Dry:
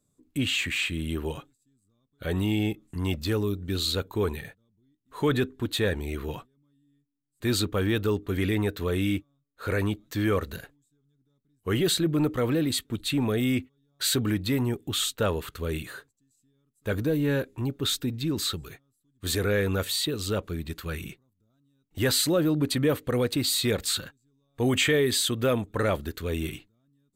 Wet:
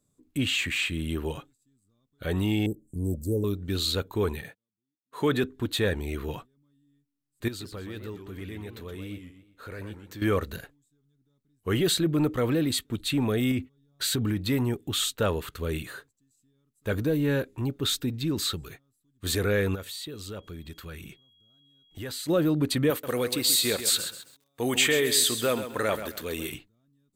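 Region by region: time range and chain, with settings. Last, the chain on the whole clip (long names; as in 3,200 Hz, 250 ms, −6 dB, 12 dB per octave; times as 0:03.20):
0:02.66–0:03.44: elliptic band-stop filter 550–8,100 Hz, stop band 60 dB + parametric band 3,600 Hz +7.5 dB 1.6 octaves
0:04.42–0:05.44: high-pass filter 140 Hz + noise gate −56 dBFS, range −21 dB
0:07.48–0:10.22: downward compressor 2 to 1, threshold −47 dBFS + feedback echo with a swinging delay time 124 ms, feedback 39%, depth 195 cents, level −8 dB
0:13.51–0:14.37: low-shelf EQ 320 Hz +5.5 dB + downward compressor, threshold −23 dBFS
0:19.74–0:22.28: downward compressor 2 to 1, threshold −43 dBFS + steady tone 3,300 Hz −61 dBFS
0:22.90–0:26.54: high-pass filter 330 Hz 6 dB per octave + high-shelf EQ 5,500 Hz +7 dB + feedback echo at a low word length 132 ms, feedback 35%, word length 8 bits, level −10 dB
whole clip: no processing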